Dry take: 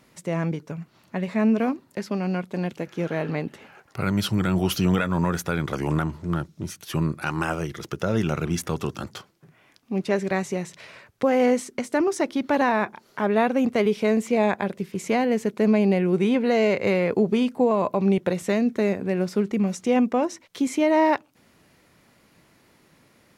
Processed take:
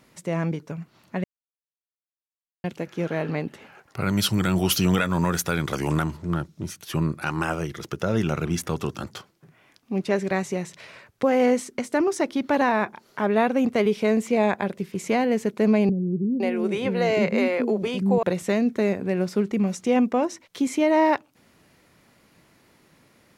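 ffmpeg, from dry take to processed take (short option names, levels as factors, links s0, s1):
-filter_complex "[0:a]asettb=1/sr,asplit=3[s0][s1][s2];[s0]atrim=end=4.094[s3];[s1]atrim=start=4.09:end=6.17,asetpts=PTS-STARTPTS,afade=t=in:d=0.004:c=qsin,afade=t=out:st=2.076:d=0.004:c=qsin,highshelf=f=2900:g=8[s4];[s2]atrim=start=6.166[s5];[s3][s4]acrossfade=d=0.004:c1=hsin:c2=qsin[s6];[s6][s5]acrossfade=d=0.004:c1=qsin:c2=hsin,asettb=1/sr,asplit=3[s7][s8][s9];[s7]atrim=end=15.894[s10];[s8]atrim=start=15.89:end=18.23,asetpts=PTS-STARTPTS,afade=t=in:d=0.004:c=qsin,afade=t=out:st=2.336:d=0.004:c=qsin,acrossover=split=320[s11][s12];[s12]adelay=510[s13];[s11][s13]amix=inputs=2:normalize=0,atrim=end_sample=103194[s14];[s9]atrim=start=18.226[s15];[s10][s14]acrossfade=d=0.004:c1=hsin:c2=qsin[s16];[s16][s15]acrossfade=d=0.004:c1=qsin:c2=hsin,asplit=3[s17][s18][s19];[s17]atrim=end=1.24,asetpts=PTS-STARTPTS,afade=t=out:st=1.236:d=0.004:c=hsin[s20];[s18]atrim=start=1.24:end=2.64,asetpts=PTS-STARTPTS,volume=0[s21];[s19]atrim=start=2.64,asetpts=PTS-STARTPTS,afade=t=in:d=0.004:c=hsin[s22];[s20][s21][s22]concat=n=3:v=0:a=1"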